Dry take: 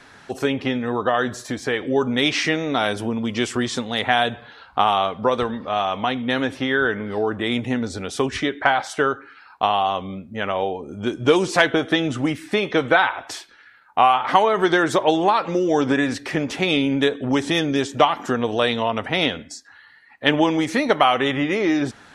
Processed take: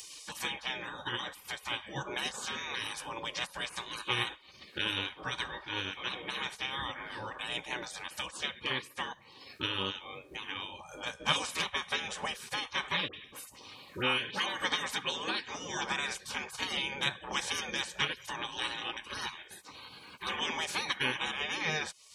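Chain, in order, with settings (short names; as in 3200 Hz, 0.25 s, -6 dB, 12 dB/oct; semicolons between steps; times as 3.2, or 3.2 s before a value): spectral gate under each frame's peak -20 dB weak; upward compressor, threshold -34 dBFS; 13.08–14.46 dispersion highs, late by 64 ms, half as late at 1500 Hz; notch comb 680 Hz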